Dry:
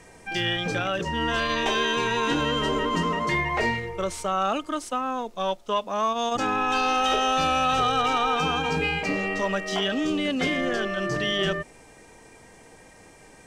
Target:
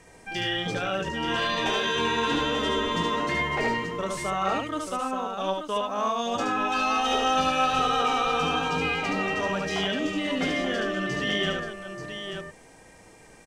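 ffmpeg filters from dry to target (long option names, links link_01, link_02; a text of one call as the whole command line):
ffmpeg -i in.wav -filter_complex "[0:a]aecho=1:1:73|883:0.708|0.447,asettb=1/sr,asplit=3[link_01][link_02][link_03];[link_01]atrim=end=1.414[link_04];[link_02]atrim=start=1.41:end=3.16,asetpts=PTS-STARTPTS,afade=type=in:duration=0.004:curve=qsin,afade=type=out:start_time=1.746:duration=0.004:curve=qsin,aeval=exprs='val(0)+0.0251*sin(2*PI*3500*n/s)':channel_layout=same[link_05];[link_03]atrim=start=3.156[link_06];[link_04][link_05]acrossfade=duration=0.004:curve1=hsin:curve2=qsin[link_07];[link_07][link_06]acrossfade=duration=0.004:curve1=qsin:curve2=hsin,volume=-3.5dB" out.wav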